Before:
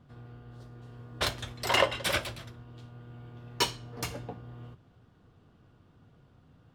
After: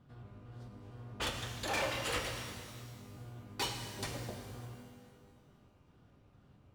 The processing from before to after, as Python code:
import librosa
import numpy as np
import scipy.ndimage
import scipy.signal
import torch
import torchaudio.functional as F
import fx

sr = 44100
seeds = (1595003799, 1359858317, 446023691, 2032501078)

y = fx.pitch_trill(x, sr, semitones=-3.0, every_ms=226)
y = np.clip(y, -10.0 ** (-27.5 / 20.0), 10.0 ** (-27.5 / 20.0))
y = fx.rev_shimmer(y, sr, seeds[0], rt60_s=1.8, semitones=12, shimmer_db=-8, drr_db=3.5)
y = F.gain(torch.from_numpy(y), -4.5).numpy()